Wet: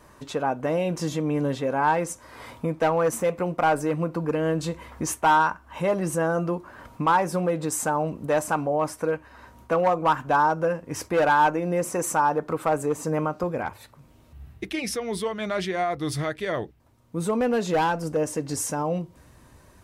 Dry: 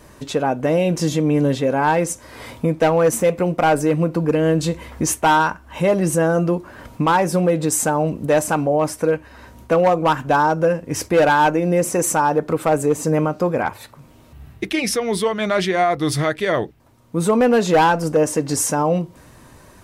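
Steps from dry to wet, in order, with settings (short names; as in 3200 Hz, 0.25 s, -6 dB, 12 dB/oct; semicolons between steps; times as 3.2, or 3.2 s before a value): bell 1100 Hz +6.5 dB 1.2 oct, from 13.43 s 63 Hz; gain -8.5 dB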